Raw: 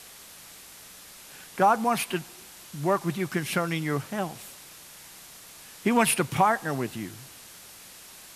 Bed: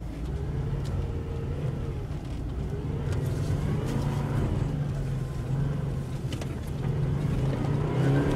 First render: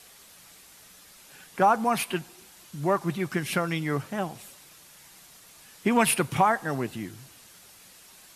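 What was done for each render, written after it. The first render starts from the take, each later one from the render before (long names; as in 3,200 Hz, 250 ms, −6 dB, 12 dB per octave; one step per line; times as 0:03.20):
broadband denoise 6 dB, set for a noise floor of −48 dBFS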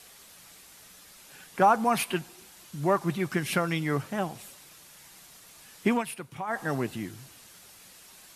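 0:05.90–0:06.60: duck −14.5 dB, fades 0.13 s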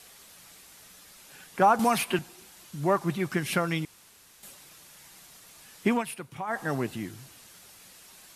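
0:01.79–0:02.19: multiband upward and downward compressor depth 70%
0:03.85–0:04.43: fill with room tone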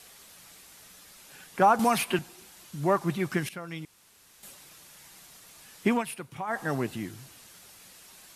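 0:03.49–0:04.49: fade in, from −17.5 dB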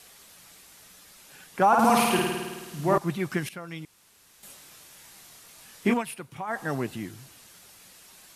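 0:01.67–0:02.98: flutter between parallel walls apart 9.1 metres, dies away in 1.4 s
0:04.47–0:05.94: double-tracking delay 25 ms −4 dB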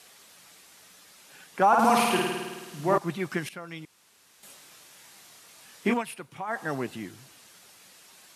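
high-pass filter 200 Hz 6 dB per octave
high-shelf EQ 12,000 Hz −8.5 dB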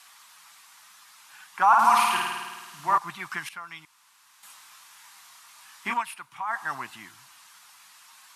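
low shelf with overshoot 700 Hz −12.5 dB, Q 3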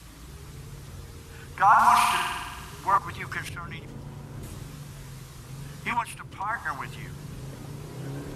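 mix in bed −12.5 dB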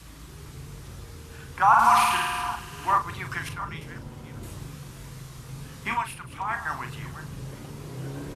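delay that plays each chunk backwards 365 ms, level −13 dB
double-tracking delay 39 ms −9 dB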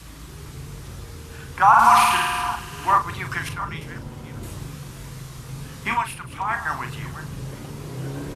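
level +4.5 dB
brickwall limiter −3 dBFS, peak gain reduction 2 dB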